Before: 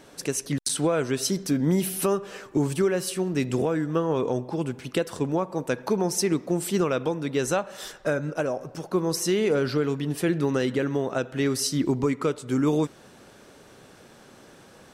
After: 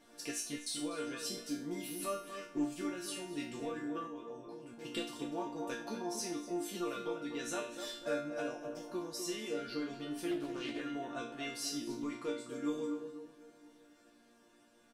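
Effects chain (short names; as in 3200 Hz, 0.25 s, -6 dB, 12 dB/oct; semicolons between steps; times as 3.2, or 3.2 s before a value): vocal rider within 4 dB 0.5 s; tape echo 0.247 s, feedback 54%, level -6 dB, low-pass 1200 Hz; 4.07–4.81 level quantiser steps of 16 dB; dynamic EQ 3500 Hz, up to +5 dB, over -43 dBFS, Q 1; resonator bank A#3 major, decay 0.46 s; echo 0.246 s -17 dB; 10.31–10.81 Doppler distortion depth 0.2 ms; gain +6 dB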